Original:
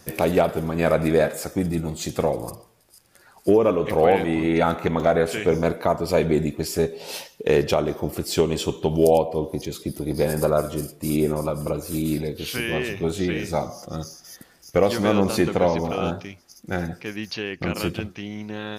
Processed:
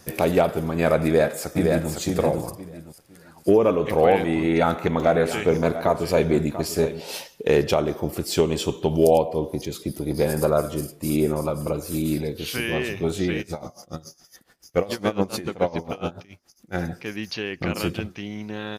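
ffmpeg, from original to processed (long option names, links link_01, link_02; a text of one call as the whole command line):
ffmpeg -i in.wav -filter_complex "[0:a]asplit=2[link_01][link_02];[link_02]afade=type=in:start_time=1.04:duration=0.01,afade=type=out:start_time=1.9:duration=0.01,aecho=0:1:510|1020|1530|2040:0.668344|0.167086|0.0417715|0.0104429[link_03];[link_01][link_03]amix=inputs=2:normalize=0,asplit=3[link_04][link_05][link_06];[link_04]afade=type=out:start_time=5.01:duration=0.02[link_07];[link_05]aecho=1:1:691:0.237,afade=type=in:start_time=5.01:duration=0.02,afade=type=out:start_time=6.99:duration=0.02[link_08];[link_06]afade=type=in:start_time=6.99:duration=0.02[link_09];[link_07][link_08][link_09]amix=inputs=3:normalize=0,asplit=3[link_10][link_11][link_12];[link_10]afade=type=out:start_time=13.41:duration=0.02[link_13];[link_11]aeval=exprs='val(0)*pow(10,-20*(0.5-0.5*cos(2*PI*7.1*n/s))/20)':channel_layout=same,afade=type=in:start_time=13.41:duration=0.02,afade=type=out:start_time=16.74:duration=0.02[link_14];[link_12]afade=type=in:start_time=16.74:duration=0.02[link_15];[link_13][link_14][link_15]amix=inputs=3:normalize=0" out.wav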